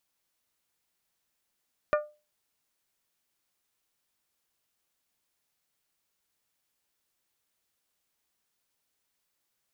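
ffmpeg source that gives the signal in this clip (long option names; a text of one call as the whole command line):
ffmpeg -f lavfi -i "aevalsrc='0.112*pow(10,-3*t/0.3)*sin(2*PI*599*t)+0.0668*pow(10,-3*t/0.185)*sin(2*PI*1198*t)+0.0398*pow(10,-3*t/0.163)*sin(2*PI*1437.6*t)+0.0237*pow(10,-3*t/0.139)*sin(2*PI*1797*t)+0.0141*pow(10,-3*t/0.114)*sin(2*PI*2396*t)':duration=0.89:sample_rate=44100" out.wav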